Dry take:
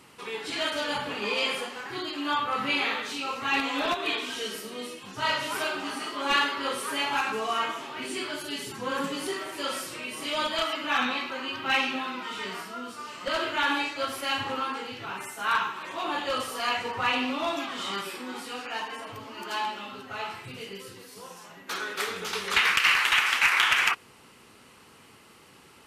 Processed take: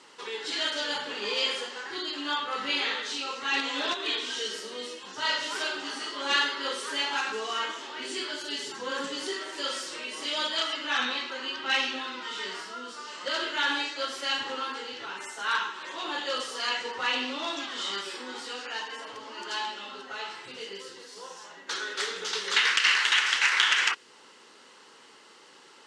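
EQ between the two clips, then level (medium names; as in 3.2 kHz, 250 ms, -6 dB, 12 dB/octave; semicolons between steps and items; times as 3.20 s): dynamic bell 870 Hz, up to -6 dB, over -41 dBFS, Q 0.82; cabinet simulation 450–7400 Hz, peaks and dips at 690 Hz -7 dB, 1.2 kHz -5 dB, 2.4 kHz -9 dB; +4.5 dB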